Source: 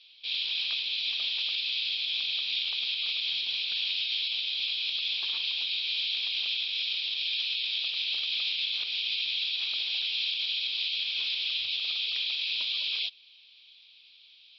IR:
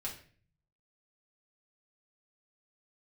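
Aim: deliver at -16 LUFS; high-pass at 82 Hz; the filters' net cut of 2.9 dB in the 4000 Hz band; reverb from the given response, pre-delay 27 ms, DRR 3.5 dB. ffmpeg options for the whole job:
-filter_complex "[0:a]highpass=82,equalizer=f=4k:t=o:g=-3.5,asplit=2[a][b];[1:a]atrim=start_sample=2205,adelay=27[c];[b][c]afir=irnorm=-1:irlink=0,volume=-4dB[d];[a][d]amix=inputs=2:normalize=0,volume=13.5dB"

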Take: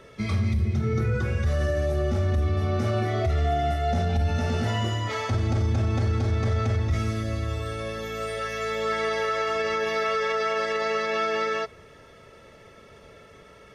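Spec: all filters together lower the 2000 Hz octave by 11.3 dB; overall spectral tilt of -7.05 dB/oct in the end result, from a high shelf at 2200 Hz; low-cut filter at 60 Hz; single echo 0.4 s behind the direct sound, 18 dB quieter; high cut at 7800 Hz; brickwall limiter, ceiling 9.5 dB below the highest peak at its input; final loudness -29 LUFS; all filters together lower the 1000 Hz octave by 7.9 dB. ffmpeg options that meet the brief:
-af "highpass=60,lowpass=7.8k,equalizer=f=1k:t=o:g=-7.5,equalizer=f=2k:t=o:g=-7,highshelf=f=2.2k:g=-8.5,alimiter=level_in=1.5dB:limit=-24dB:level=0:latency=1,volume=-1.5dB,aecho=1:1:400:0.126,volume=4dB"

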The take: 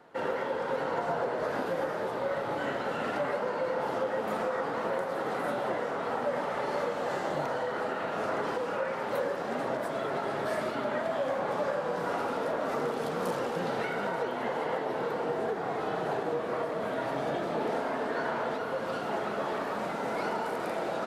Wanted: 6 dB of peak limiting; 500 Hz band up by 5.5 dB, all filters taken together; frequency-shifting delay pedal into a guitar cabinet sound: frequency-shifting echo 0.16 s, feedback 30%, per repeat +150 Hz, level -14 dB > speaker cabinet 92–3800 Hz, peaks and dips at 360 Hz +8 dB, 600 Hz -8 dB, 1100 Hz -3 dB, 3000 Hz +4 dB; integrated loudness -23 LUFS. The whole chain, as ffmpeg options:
-filter_complex "[0:a]equalizer=f=500:t=o:g=8,alimiter=limit=-19.5dB:level=0:latency=1,asplit=4[a][b][c][d];[b]adelay=160,afreqshift=150,volume=-14dB[e];[c]adelay=320,afreqshift=300,volume=-24.5dB[f];[d]adelay=480,afreqshift=450,volume=-34.9dB[g];[a][e][f][g]amix=inputs=4:normalize=0,highpass=92,equalizer=f=360:t=q:w=4:g=8,equalizer=f=600:t=q:w=4:g=-8,equalizer=f=1.1k:t=q:w=4:g=-3,equalizer=f=3k:t=q:w=4:g=4,lowpass=f=3.8k:w=0.5412,lowpass=f=3.8k:w=1.3066,volume=6.5dB"

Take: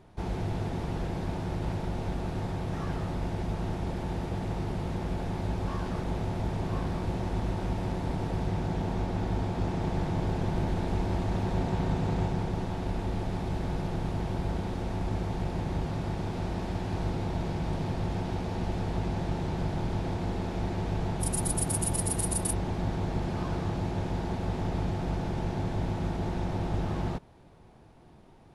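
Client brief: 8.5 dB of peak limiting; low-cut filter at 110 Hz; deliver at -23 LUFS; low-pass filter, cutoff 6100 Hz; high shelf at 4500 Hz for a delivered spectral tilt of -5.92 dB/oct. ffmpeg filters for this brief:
-af "highpass=110,lowpass=6.1k,highshelf=f=4.5k:g=9,volume=11.5dB,alimiter=limit=-12dB:level=0:latency=1"

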